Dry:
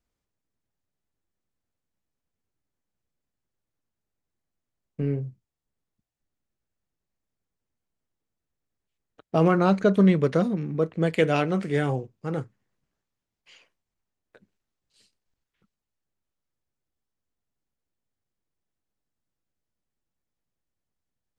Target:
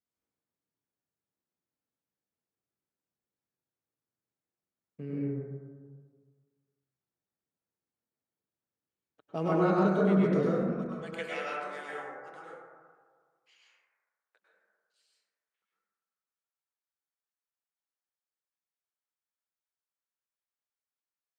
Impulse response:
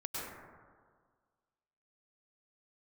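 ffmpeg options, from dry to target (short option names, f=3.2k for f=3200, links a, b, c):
-filter_complex "[0:a]asetnsamples=n=441:p=0,asendcmd='10.62 highpass f 900',highpass=130[a];[1:a]atrim=start_sample=2205[b];[a][b]afir=irnorm=-1:irlink=0,volume=-8dB"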